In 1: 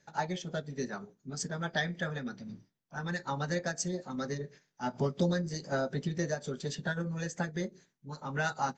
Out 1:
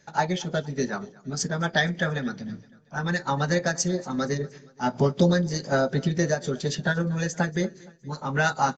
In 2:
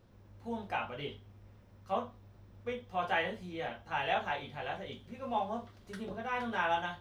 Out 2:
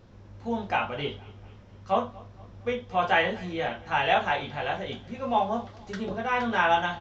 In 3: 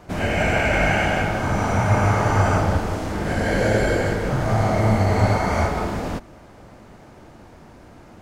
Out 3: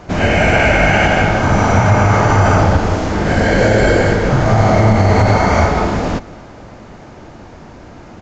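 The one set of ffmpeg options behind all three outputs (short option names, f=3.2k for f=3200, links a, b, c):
-filter_complex "[0:a]asplit=2[a][b];[b]aecho=0:1:234|468|702:0.0708|0.0354|0.0177[c];[a][c]amix=inputs=2:normalize=0,aresample=16000,aresample=44100,alimiter=level_in=10dB:limit=-1dB:release=50:level=0:latency=1,volume=-1dB"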